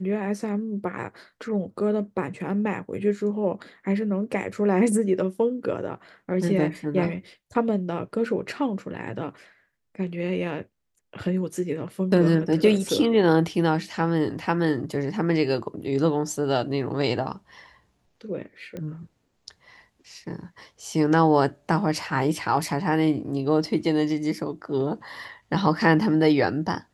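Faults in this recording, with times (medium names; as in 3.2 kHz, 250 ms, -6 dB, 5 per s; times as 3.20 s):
18.77 s: pop -22 dBFS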